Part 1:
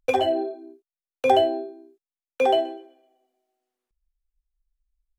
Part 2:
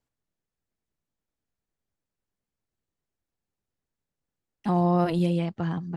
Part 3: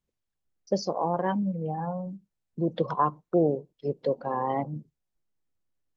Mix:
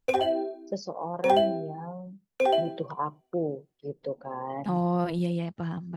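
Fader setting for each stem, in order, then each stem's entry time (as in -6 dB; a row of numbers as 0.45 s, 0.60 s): -3.5 dB, -4.0 dB, -6.5 dB; 0.00 s, 0.00 s, 0.00 s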